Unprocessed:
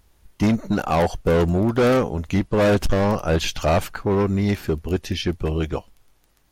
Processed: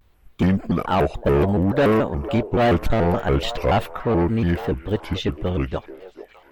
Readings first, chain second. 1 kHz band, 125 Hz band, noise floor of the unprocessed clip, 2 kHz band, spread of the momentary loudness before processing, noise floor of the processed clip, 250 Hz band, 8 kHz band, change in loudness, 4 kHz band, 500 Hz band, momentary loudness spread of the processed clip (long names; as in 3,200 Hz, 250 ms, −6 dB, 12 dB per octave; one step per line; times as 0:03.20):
+1.5 dB, +0.5 dB, −61 dBFS, −0.5 dB, 7 LU, −55 dBFS, 0.0 dB, can't be measured, 0.0 dB, −1.5 dB, 0.0 dB, 8 LU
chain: flat-topped bell 7,000 Hz −10.5 dB
echo through a band-pass that steps 453 ms, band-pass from 560 Hz, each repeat 0.7 octaves, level −10 dB
pitch modulation by a square or saw wave square 3.5 Hz, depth 250 cents